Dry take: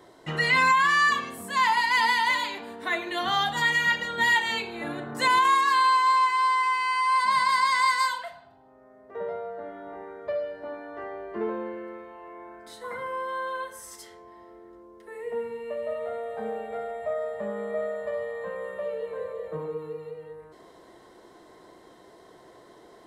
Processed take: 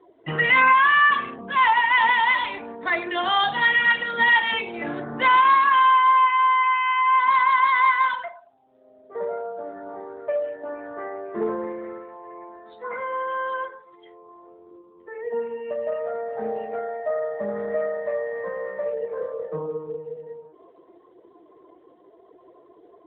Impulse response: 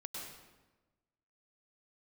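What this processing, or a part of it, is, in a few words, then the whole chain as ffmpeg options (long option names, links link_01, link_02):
mobile call with aggressive noise cancelling: -af "highpass=frequency=130:poles=1,afftdn=noise_reduction=15:noise_floor=-44,volume=5dB" -ar 8000 -c:a libopencore_amrnb -b:a 12200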